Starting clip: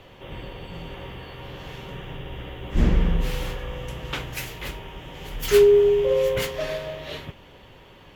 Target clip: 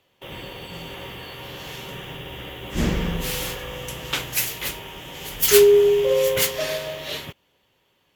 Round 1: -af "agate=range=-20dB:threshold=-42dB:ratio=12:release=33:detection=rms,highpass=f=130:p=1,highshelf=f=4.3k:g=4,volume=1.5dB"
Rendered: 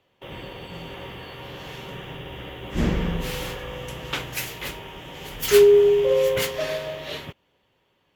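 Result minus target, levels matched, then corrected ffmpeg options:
8000 Hz band -7.0 dB
-af "agate=range=-20dB:threshold=-42dB:ratio=12:release=33:detection=rms,highpass=f=130:p=1,highshelf=f=4.3k:g=15,volume=1.5dB"

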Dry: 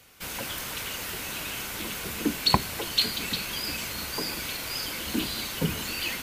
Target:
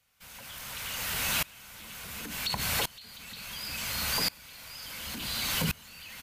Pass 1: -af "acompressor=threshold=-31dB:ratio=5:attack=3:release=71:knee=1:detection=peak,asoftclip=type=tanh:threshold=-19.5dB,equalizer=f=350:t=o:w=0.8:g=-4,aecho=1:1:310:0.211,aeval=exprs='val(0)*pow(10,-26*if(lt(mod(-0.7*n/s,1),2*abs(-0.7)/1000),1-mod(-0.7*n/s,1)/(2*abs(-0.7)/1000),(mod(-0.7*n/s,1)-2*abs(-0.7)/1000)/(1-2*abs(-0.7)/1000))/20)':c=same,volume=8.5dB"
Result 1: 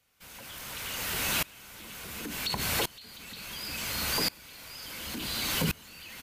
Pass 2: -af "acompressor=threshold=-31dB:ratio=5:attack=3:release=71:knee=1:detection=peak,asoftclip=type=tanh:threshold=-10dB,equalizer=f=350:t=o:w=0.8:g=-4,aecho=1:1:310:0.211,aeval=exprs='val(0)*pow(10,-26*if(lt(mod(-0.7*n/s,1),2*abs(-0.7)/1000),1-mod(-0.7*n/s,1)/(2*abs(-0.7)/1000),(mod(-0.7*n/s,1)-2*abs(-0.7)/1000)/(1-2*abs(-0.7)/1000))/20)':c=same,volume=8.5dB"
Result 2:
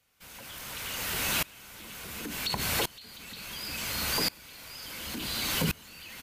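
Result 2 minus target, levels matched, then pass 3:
250 Hz band +2.5 dB
-af "acompressor=threshold=-31dB:ratio=5:attack=3:release=71:knee=1:detection=peak,asoftclip=type=tanh:threshold=-10dB,equalizer=f=350:t=o:w=0.8:g=-13,aecho=1:1:310:0.211,aeval=exprs='val(0)*pow(10,-26*if(lt(mod(-0.7*n/s,1),2*abs(-0.7)/1000),1-mod(-0.7*n/s,1)/(2*abs(-0.7)/1000),(mod(-0.7*n/s,1)-2*abs(-0.7)/1000)/(1-2*abs(-0.7)/1000))/20)':c=same,volume=8.5dB"

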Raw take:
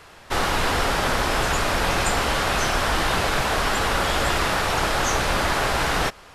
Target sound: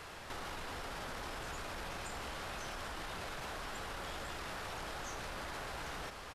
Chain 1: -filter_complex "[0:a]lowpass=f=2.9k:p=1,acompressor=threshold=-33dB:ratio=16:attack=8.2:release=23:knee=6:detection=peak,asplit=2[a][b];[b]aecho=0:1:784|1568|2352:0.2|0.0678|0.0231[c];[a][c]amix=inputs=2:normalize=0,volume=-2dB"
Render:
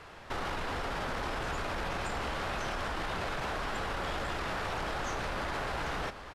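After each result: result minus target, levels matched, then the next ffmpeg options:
compressor: peak gain reduction -9 dB; 4000 Hz band -2.5 dB
-filter_complex "[0:a]lowpass=f=2.9k:p=1,acompressor=threshold=-42dB:ratio=16:attack=8.2:release=23:knee=6:detection=peak,asplit=2[a][b];[b]aecho=0:1:784|1568|2352:0.2|0.0678|0.0231[c];[a][c]amix=inputs=2:normalize=0,volume=-2dB"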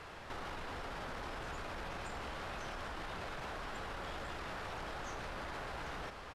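4000 Hz band -2.5 dB
-filter_complex "[0:a]acompressor=threshold=-42dB:ratio=16:attack=8.2:release=23:knee=6:detection=peak,asplit=2[a][b];[b]aecho=0:1:784|1568|2352:0.2|0.0678|0.0231[c];[a][c]amix=inputs=2:normalize=0,volume=-2dB"

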